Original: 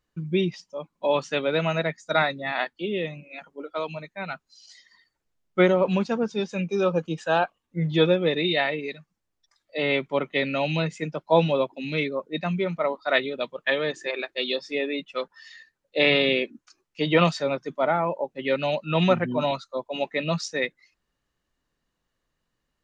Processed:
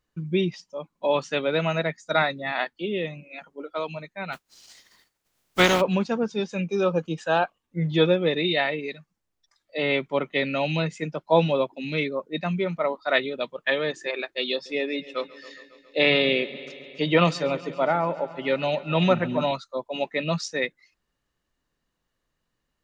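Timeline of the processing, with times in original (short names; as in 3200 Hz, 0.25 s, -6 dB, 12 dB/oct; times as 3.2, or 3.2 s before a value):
4.32–5.8 spectral contrast lowered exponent 0.45
14.52–19.48 multi-head echo 0.137 s, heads first and second, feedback 63%, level -21.5 dB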